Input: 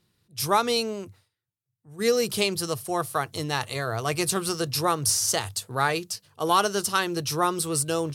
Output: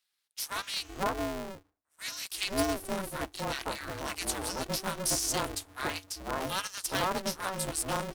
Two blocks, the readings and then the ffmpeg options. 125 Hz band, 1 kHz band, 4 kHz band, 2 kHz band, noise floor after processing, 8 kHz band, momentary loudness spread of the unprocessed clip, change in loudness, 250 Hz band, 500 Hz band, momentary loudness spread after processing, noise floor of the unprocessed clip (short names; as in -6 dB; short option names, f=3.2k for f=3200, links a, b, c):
-9.0 dB, -8.5 dB, -6.0 dB, -6.0 dB, -81 dBFS, -6.5 dB, 8 LU, -7.5 dB, -6.5 dB, -9.5 dB, 8 LU, -84 dBFS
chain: -filter_complex "[0:a]acrossover=split=150|1200[a][b][c];[a]adelay=460[d];[b]adelay=510[e];[d][e][c]amix=inputs=3:normalize=0,aeval=exprs='val(0)*sgn(sin(2*PI*190*n/s))':c=same,volume=-6.5dB"